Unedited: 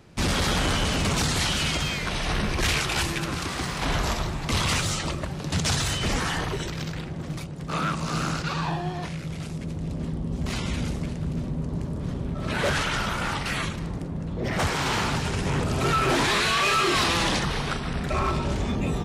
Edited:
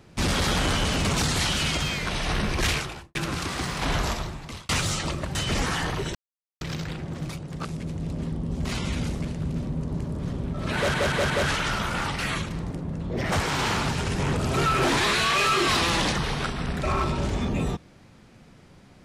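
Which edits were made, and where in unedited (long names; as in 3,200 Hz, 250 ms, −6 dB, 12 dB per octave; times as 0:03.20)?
0:02.65–0:03.15: fade out and dull
0:04.01–0:04.69: fade out
0:05.35–0:05.89: remove
0:06.69: splice in silence 0.46 s
0:07.73–0:09.46: remove
0:12.57: stutter 0.18 s, 4 plays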